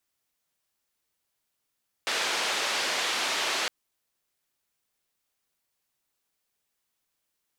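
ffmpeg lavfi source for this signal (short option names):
-f lavfi -i "anoisesrc=c=white:d=1.61:r=44100:seed=1,highpass=f=410,lowpass=f=4300,volume=-16.5dB"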